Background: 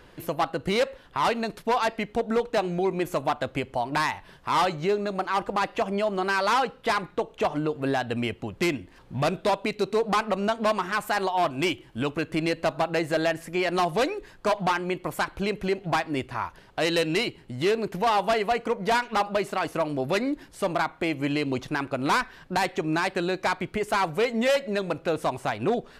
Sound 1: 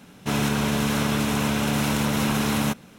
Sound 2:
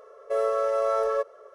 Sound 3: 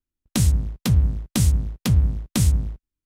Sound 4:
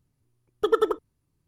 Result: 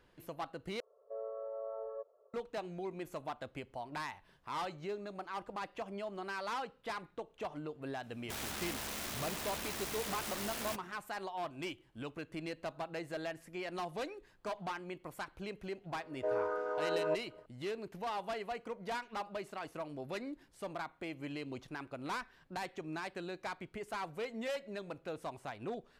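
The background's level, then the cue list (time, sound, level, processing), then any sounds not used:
background −16 dB
0:00.80: overwrite with 2 −12.5 dB + transistor ladder low-pass 1,000 Hz, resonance 35%
0:08.03: mix in 1 −16 dB + wrap-around overflow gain 20.5 dB
0:15.92: mix in 2 −8.5 dB + channel vocoder with a chord as carrier minor triad, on G#3
not used: 3, 4

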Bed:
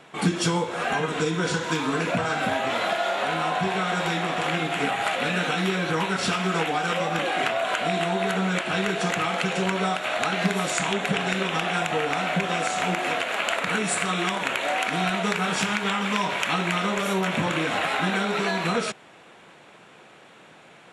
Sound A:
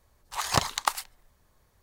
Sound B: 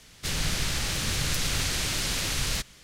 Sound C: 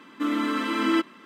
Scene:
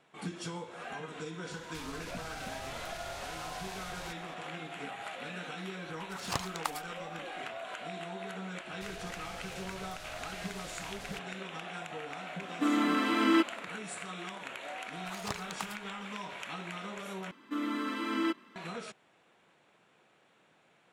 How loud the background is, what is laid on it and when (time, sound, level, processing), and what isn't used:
bed −16.5 dB
0:01.51: mix in B −9 dB + downward compressor, threshold −35 dBFS
0:05.78: mix in A −6.5 dB + amplitude modulation by smooth noise
0:08.57: mix in B −13 dB + output level in coarse steps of 12 dB
0:12.41: mix in C −2.5 dB
0:14.73: mix in A −15 dB
0:17.31: overwrite with C −8.5 dB

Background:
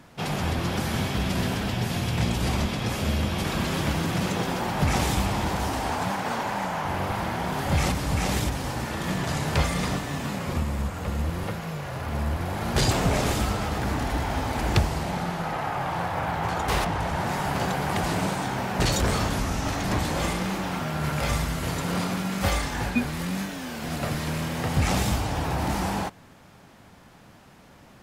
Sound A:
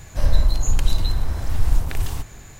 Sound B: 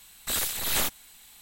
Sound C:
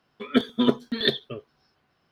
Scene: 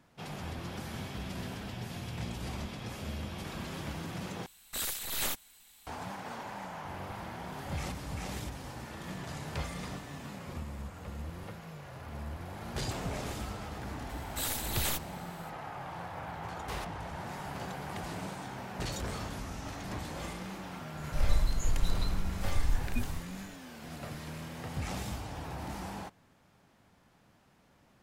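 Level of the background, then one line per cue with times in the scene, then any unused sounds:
background −13.5 dB
0:04.46: overwrite with B −7 dB
0:14.09: mix in B −7 dB
0:20.97: mix in A −11 dB
not used: C

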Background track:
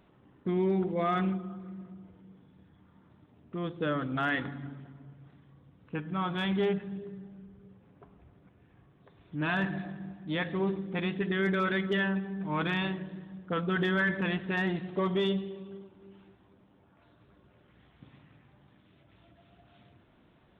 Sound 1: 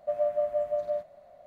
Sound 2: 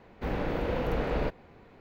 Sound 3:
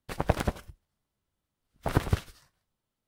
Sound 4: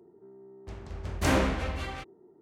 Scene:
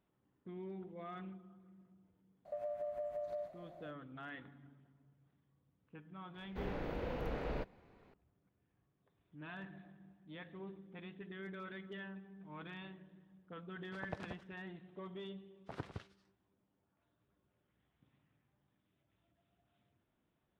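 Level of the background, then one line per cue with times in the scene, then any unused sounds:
background track −19 dB
0:02.45: mix in 1 −2.5 dB + downward compressor 8 to 1, threshold −36 dBFS
0:06.34: mix in 2 −10.5 dB
0:13.83: mix in 3 −17.5 dB + band-pass filter 110–5,000 Hz
not used: 4

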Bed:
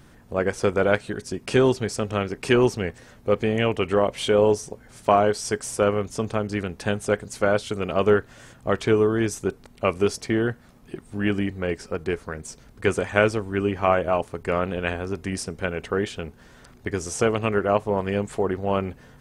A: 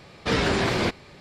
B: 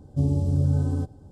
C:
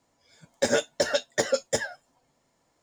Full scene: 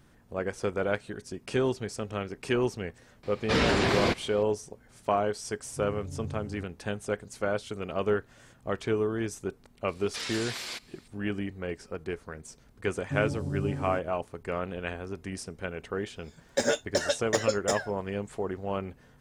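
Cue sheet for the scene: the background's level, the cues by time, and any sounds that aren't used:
bed −8.5 dB
0:03.23: mix in A −2 dB
0:05.60: mix in B −17 dB
0:09.88: mix in A −0.5 dB + first difference
0:12.94: mix in B −5.5 dB + high-pass filter 150 Hz
0:15.95: mix in C −2.5 dB

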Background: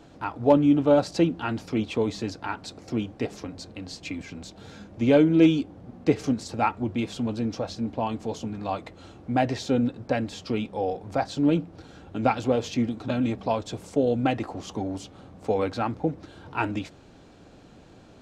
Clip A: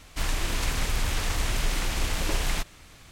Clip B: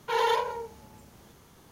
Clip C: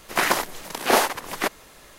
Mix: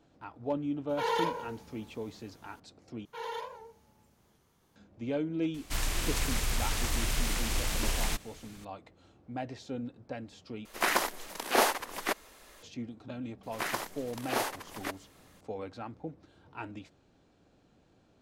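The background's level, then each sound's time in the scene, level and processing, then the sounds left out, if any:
background −14.5 dB
0:00.89: mix in B −5 dB
0:03.05: overwrite with B −13.5 dB + wow of a warped record 78 rpm, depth 100 cents
0:05.54: mix in A −4.5 dB + high-shelf EQ 6,400 Hz +6.5 dB
0:10.65: overwrite with C −6.5 dB + parametric band 130 Hz −11.5 dB 0.64 octaves
0:13.43: mix in C −13 dB

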